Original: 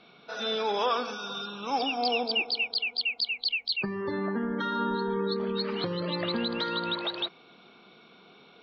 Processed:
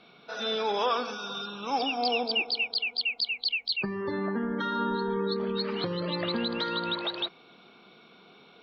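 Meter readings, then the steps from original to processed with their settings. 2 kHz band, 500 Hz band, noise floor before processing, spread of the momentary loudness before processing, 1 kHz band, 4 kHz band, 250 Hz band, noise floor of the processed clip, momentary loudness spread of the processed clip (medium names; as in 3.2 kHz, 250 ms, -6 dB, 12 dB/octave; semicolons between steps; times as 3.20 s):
0.0 dB, 0.0 dB, -56 dBFS, 7 LU, 0.0 dB, 0.0 dB, 0.0 dB, -56 dBFS, 7 LU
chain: Opus 96 kbps 48 kHz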